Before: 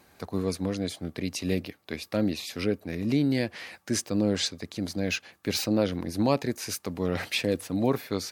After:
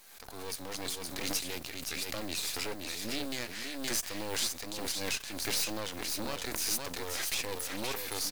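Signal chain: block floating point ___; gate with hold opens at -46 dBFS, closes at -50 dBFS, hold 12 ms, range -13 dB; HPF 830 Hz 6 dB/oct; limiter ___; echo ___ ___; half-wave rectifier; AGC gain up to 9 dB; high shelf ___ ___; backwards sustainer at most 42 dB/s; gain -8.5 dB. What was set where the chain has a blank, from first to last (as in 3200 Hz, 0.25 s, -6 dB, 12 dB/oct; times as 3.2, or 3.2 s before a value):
7-bit, -24 dBFS, 0.52 s, -6 dB, 3400 Hz, +9.5 dB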